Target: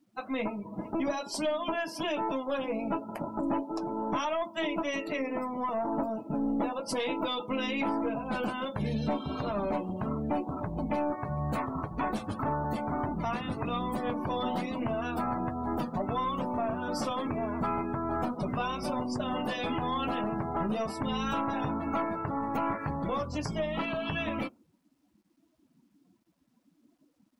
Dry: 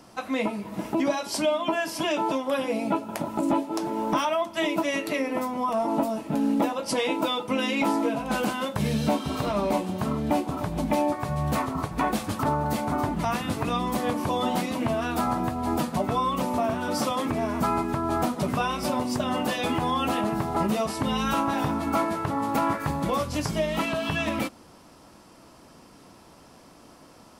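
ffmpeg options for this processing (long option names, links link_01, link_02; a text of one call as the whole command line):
ffmpeg -i in.wav -af "aeval=exprs='0.224*(cos(1*acos(clip(val(0)/0.224,-1,1)))-cos(1*PI/2))+0.002*(cos(3*acos(clip(val(0)/0.224,-1,1)))-cos(3*PI/2))+0.0158*(cos(4*acos(clip(val(0)/0.224,-1,1)))-cos(4*PI/2))+0.0178*(cos(5*acos(clip(val(0)/0.224,-1,1)))-cos(5*PI/2))':channel_layout=same,afftdn=noise_reduction=28:noise_floor=-36,acrusher=bits=11:mix=0:aa=0.000001,volume=-7dB" out.wav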